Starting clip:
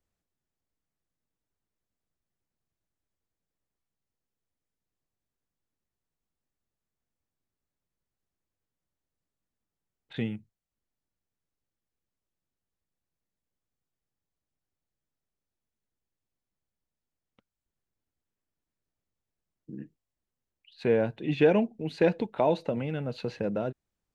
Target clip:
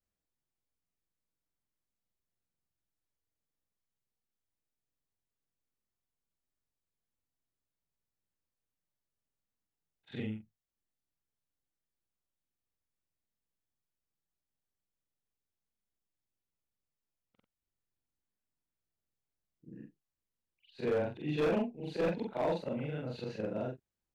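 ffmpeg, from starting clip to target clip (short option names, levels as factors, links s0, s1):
-af "afftfilt=real='re':imag='-im':win_size=4096:overlap=0.75,asoftclip=type=hard:threshold=0.0596,volume=0.841"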